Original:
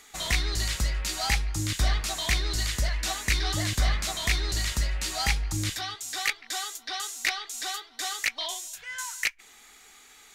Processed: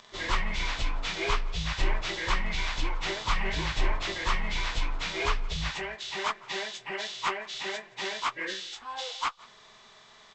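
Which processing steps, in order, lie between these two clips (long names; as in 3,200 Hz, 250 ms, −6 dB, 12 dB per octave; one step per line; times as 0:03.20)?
phase-vocoder pitch shift without resampling −11.5 semitones
on a send: single-tap delay 174 ms −24 dB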